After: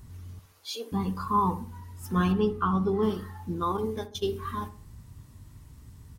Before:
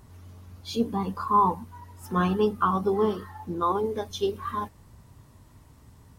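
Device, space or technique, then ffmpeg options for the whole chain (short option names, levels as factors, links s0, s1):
smiley-face EQ: -filter_complex "[0:a]lowshelf=f=180:g=6,equalizer=f=650:t=o:w=1.7:g=-7.5,highshelf=f=5800:g=3,asettb=1/sr,asplit=3[s0][s1][s2];[s0]atrim=end=0.394[s3];[s1]atrim=start=0.39:end=0.92,asetpts=PTS-STARTPTS,afade=t=in:d=0.004:c=qsin,afade=t=out:st=0.526:d=0.004:c=qsin,highpass=f=460:w=0.5412,highpass=f=460:w=1.3066[s4];[s2]atrim=start=0.916[s5];[s3][s4]acrossfade=d=0.004:c1=hsin:c2=qsin[s6];[s6][s5]acrossfade=d=0.004:c1=qsin:c2=hsin,asettb=1/sr,asplit=3[s7][s8][s9];[s7]atrim=end=2.324[s10];[s8]atrim=start=2.32:end=3.03,asetpts=PTS-STARTPTS,afade=t=in:d=0.004:c=qsin,afade=t=out:st=0.706:d=0.004:c=qsin,aemphasis=mode=reproduction:type=50kf[s11];[s9]atrim=start=3.026[s12];[s10][s11]acrossfade=d=0.004:c1=hsin:c2=qsin[s13];[s13][s12]acrossfade=d=0.004:c1=qsin:c2=hsin,asettb=1/sr,asplit=3[s14][s15][s16];[s14]atrim=end=3.774[s17];[s15]atrim=start=3.77:end=4.3,asetpts=PTS-STARTPTS,afade=t=in:d=0.004:c=qsin,afade=t=out:st=0.526:d=0.004:c=qsin,agate=range=0.0631:threshold=0.02:ratio=16:detection=peak[s18];[s16]atrim=start=4.296[s19];[s17][s18]acrossfade=d=0.004:c1=hsin:c2=qsin[s20];[s20][s19]acrossfade=d=0.004:c1=qsin:c2=hsin,asplit=2[s21][s22];[s22]adelay=64,lowpass=f=1300:p=1,volume=0.266,asplit=2[s23][s24];[s24]adelay=64,lowpass=f=1300:p=1,volume=0.46,asplit=2[s25][s26];[s26]adelay=64,lowpass=f=1300:p=1,volume=0.46,asplit=2[s27][s28];[s28]adelay=64,lowpass=f=1300:p=1,volume=0.46,asplit=2[s29][s30];[s30]adelay=64,lowpass=f=1300:p=1,volume=0.46[s31];[s21][s23][s25][s27][s29][s31]amix=inputs=6:normalize=0"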